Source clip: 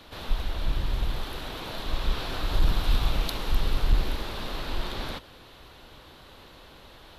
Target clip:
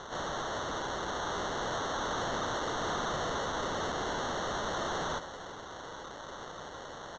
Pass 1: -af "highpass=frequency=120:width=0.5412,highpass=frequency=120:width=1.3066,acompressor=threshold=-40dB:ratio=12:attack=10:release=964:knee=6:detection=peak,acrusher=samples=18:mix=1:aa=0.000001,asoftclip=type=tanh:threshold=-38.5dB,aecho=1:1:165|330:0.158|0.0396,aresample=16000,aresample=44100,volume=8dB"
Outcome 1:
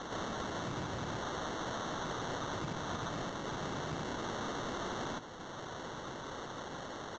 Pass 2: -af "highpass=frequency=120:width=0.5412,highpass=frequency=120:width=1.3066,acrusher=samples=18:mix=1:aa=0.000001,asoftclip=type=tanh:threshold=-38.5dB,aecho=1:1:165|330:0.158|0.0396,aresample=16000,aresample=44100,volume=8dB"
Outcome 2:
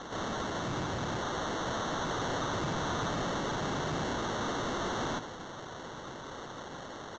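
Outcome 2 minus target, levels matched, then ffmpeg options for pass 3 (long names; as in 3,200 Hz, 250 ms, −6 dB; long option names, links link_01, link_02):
125 Hz band +6.0 dB
-af "highpass=frequency=400:width=0.5412,highpass=frequency=400:width=1.3066,acrusher=samples=18:mix=1:aa=0.000001,asoftclip=type=tanh:threshold=-38.5dB,aecho=1:1:165|330:0.158|0.0396,aresample=16000,aresample=44100,volume=8dB"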